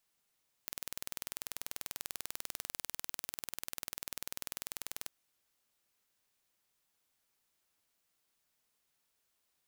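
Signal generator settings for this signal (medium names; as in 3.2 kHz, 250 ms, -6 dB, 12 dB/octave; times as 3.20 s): pulse train 20.3 per s, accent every 0, -11.5 dBFS 4.40 s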